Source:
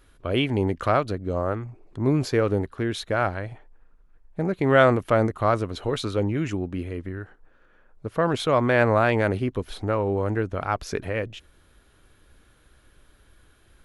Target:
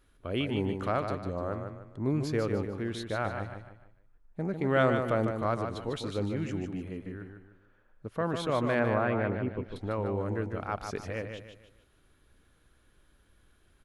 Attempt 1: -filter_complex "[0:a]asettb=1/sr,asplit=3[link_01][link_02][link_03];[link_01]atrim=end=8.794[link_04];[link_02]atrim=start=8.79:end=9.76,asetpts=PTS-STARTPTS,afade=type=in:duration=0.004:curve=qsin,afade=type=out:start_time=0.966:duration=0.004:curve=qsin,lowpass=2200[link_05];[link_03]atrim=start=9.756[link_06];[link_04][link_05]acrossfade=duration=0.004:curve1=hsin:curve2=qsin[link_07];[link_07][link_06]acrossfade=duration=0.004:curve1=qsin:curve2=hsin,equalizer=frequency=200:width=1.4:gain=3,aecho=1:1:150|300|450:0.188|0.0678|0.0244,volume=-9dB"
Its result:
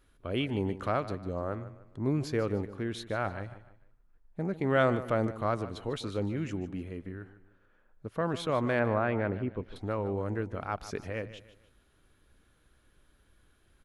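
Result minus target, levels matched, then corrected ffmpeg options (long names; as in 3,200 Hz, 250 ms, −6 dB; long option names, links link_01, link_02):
echo-to-direct −8 dB
-filter_complex "[0:a]asettb=1/sr,asplit=3[link_01][link_02][link_03];[link_01]atrim=end=8.794[link_04];[link_02]atrim=start=8.79:end=9.76,asetpts=PTS-STARTPTS,afade=type=in:duration=0.004:curve=qsin,afade=type=out:start_time=0.966:duration=0.004:curve=qsin,lowpass=2200[link_05];[link_03]atrim=start=9.756[link_06];[link_04][link_05]acrossfade=duration=0.004:curve1=hsin:curve2=qsin[link_07];[link_07][link_06]acrossfade=duration=0.004:curve1=qsin:curve2=hsin,equalizer=frequency=200:width=1.4:gain=3,aecho=1:1:150|300|450|600:0.473|0.17|0.0613|0.0221,volume=-9dB"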